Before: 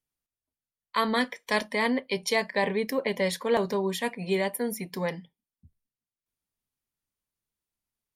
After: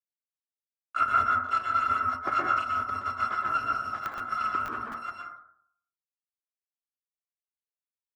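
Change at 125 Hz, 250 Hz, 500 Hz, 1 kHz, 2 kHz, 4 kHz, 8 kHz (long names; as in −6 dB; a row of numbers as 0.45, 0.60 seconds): −8.5 dB, −15.5 dB, −17.5 dB, +7.0 dB, −2.0 dB, −12.0 dB, below −15 dB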